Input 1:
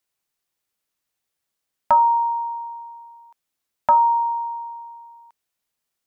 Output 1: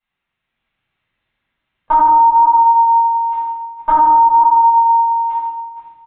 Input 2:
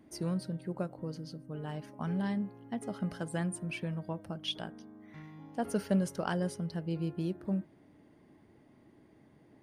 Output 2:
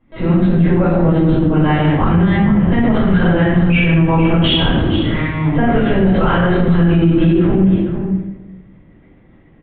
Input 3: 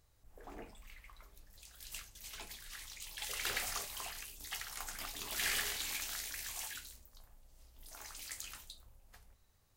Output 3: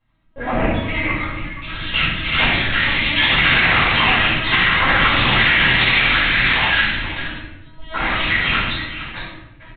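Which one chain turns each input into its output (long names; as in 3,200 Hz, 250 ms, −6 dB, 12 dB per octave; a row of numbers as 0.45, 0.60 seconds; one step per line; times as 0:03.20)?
drawn EQ curve 320 Hz 0 dB, 640 Hz −4 dB, 2,000 Hz +5 dB
downward compressor 10 to 1, threshold −37 dBFS
high-frequency loss of the air 290 metres
mains-hum notches 50/100/150/200/250/300/350/400/450 Hz
noise gate with hold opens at −50 dBFS
single-tap delay 464 ms −11.5 dB
automatic gain control gain up to 4 dB
linear-prediction vocoder at 8 kHz pitch kept
high-pass filter 54 Hz 6 dB per octave
rectangular room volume 370 cubic metres, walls mixed, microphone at 5.3 metres
boost into a limiter +23 dB
level −4 dB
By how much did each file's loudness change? +8.5, +22.5, +25.0 LU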